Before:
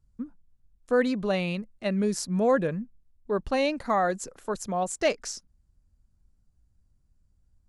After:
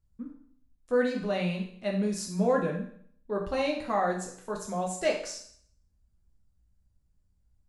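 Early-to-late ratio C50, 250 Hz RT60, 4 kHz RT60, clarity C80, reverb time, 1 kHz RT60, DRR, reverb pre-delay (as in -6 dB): 6.0 dB, 0.65 s, 0.60 s, 10.0 dB, 0.60 s, 0.60 s, -1.0 dB, 7 ms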